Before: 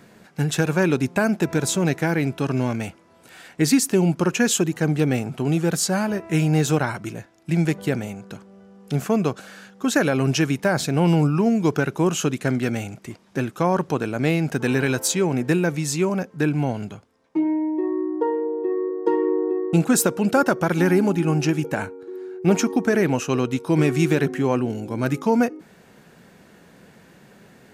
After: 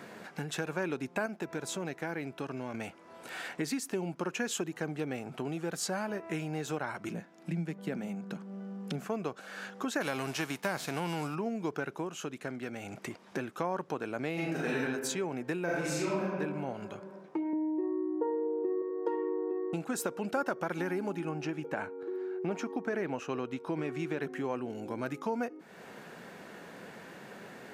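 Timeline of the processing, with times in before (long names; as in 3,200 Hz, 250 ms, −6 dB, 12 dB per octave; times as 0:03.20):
0:01.26–0:02.74: clip gain −5.5 dB
0:07.08–0:09.08: high-pass with resonance 180 Hz
0:10.00–0:11.34: spectral envelope flattened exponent 0.6
0:11.92–0:12.97: duck −8.5 dB, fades 0.16 s
0:14.33–0:14.82: thrown reverb, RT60 0.83 s, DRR −7 dB
0:15.64–0:16.22: thrown reverb, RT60 1.5 s, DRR −8 dB
0:17.53–0:18.82: spectral tilt −3.5 dB per octave
0:21.29–0:24.22: high-shelf EQ 5,900 Hz −10.5 dB
whole clip: high-shelf EQ 3,100 Hz −9 dB; downward compressor 3 to 1, threshold −39 dBFS; high-pass filter 490 Hz 6 dB per octave; level +7 dB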